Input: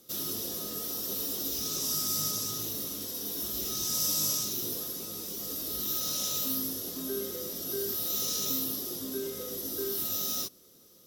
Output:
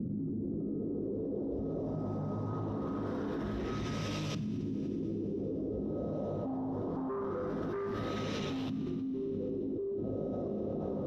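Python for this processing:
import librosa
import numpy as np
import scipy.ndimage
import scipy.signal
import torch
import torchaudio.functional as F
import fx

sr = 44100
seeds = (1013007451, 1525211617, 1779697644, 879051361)

y = scipy.signal.sosfilt(scipy.signal.butter(2, 71.0, 'highpass', fs=sr, output='sos'), x)
y = fx.tilt_eq(y, sr, slope=-3.0)
y = 10.0 ** (-34.5 / 20.0) * np.tanh(y / 10.0 ** (-34.5 / 20.0))
y = fx.filter_lfo_lowpass(y, sr, shape='saw_up', hz=0.23, low_hz=210.0, high_hz=2900.0, q=2.3)
y = fx.rev_schroeder(y, sr, rt60_s=3.7, comb_ms=26, drr_db=11.5)
y = fx.env_flatten(y, sr, amount_pct=100)
y = y * 10.0 ** (-7.0 / 20.0)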